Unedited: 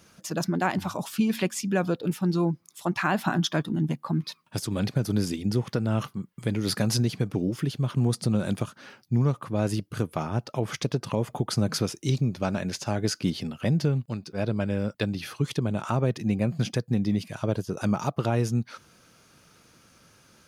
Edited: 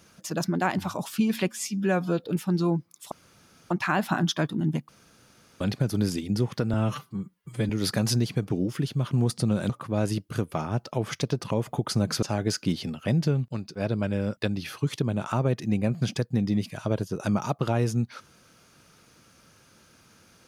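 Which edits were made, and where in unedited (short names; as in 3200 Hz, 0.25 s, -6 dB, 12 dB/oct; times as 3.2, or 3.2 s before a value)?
1.48–1.99 stretch 1.5×
2.86 insert room tone 0.59 s
4.04–4.76 room tone
5.89–6.53 stretch 1.5×
8.53–9.31 cut
11.84–12.8 cut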